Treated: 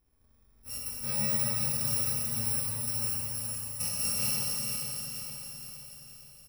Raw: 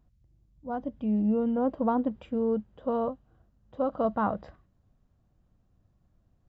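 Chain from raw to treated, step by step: bit-reversed sample order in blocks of 128 samples; 1.26–3.02 s: level held to a coarse grid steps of 9 dB; feedback delay 469 ms, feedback 52%, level -6.5 dB; Schroeder reverb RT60 3.3 s, combs from 28 ms, DRR -4.5 dB; trim -7.5 dB

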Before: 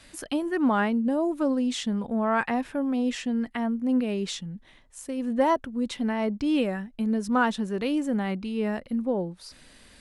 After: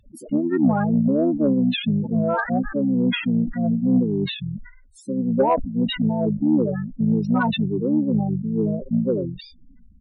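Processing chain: loudest bins only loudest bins 4; harmony voices -12 st -14 dB, -5 st -4 dB; in parallel at -9.5 dB: sine folder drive 4 dB, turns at -11 dBFS; on the sum: decay stretcher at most 98 dB/s

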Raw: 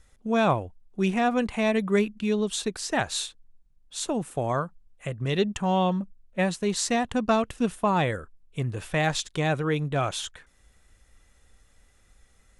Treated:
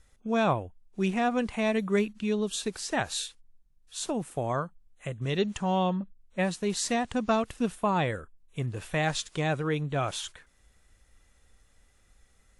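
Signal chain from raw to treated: trim -3 dB; WMA 64 kbps 32 kHz

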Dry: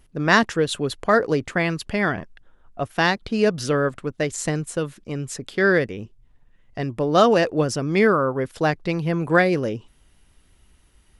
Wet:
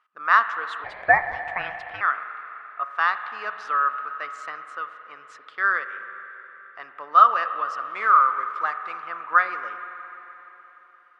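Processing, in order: 7.79–9.04 s: CVSD coder 64 kbps; ladder band-pass 1.3 kHz, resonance 80%; spring tank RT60 3.8 s, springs 41/57 ms, chirp 45 ms, DRR 9 dB; 0.84–2.01 s: ring modulator 520 Hz; trim +7 dB

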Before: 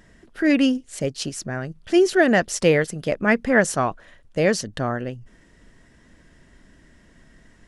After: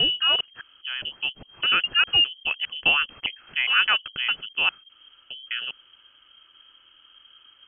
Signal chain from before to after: slices played last to first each 204 ms, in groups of 4; frequency inversion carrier 3.2 kHz; trim -3.5 dB

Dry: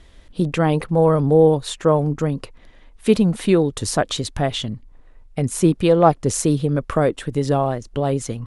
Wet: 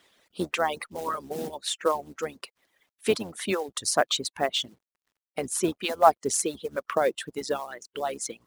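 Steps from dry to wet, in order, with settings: octave divider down 1 oct, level -4 dB; reverb removal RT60 1.8 s; high-pass 260 Hz 12 dB/octave; bass shelf 430 Hz -8 dB; companded quantiser 6-bit; harmonic-percussive split harmonic -18 dB

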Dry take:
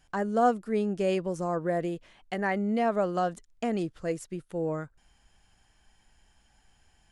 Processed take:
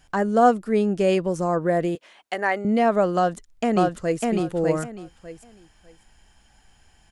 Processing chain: 1.95–2.65 s: high-pass 430 Hz 12 dB/octave; 3.16–4.23 s: echo throw 600 ms, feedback 20%, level -1.5 dB; trim +7 dB

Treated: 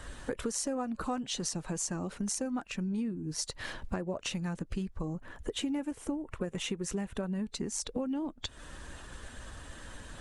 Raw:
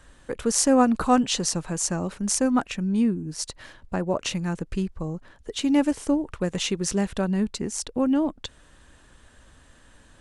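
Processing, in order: coarse spectral quantiser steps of 15 dB; 5.14–7.44 s: peaking EQ 4.7 kHz -8 dB 1 oct; compression 8:1, threshold -40 dBFS, peak gain reduction 24.5 dB; trim +7.5 dB

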